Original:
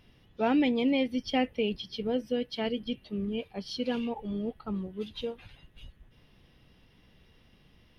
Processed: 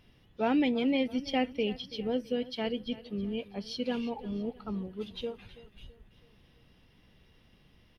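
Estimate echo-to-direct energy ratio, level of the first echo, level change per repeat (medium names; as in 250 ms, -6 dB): -17.0 dB, -18.0 dB, -7.0 dB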